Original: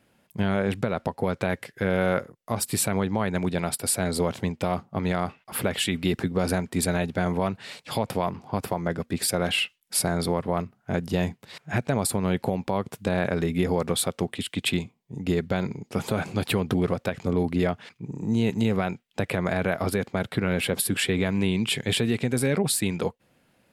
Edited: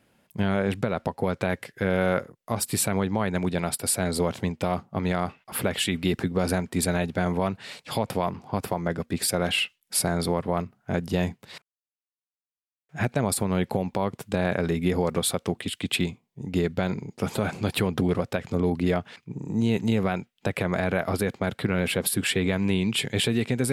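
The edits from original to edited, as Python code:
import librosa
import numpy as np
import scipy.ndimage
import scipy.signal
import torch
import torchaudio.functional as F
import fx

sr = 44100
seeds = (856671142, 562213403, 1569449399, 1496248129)

y = fx.edit(x, sr, fx.insert_silence(at_s=11.62, length_s=1.27), tone=tone)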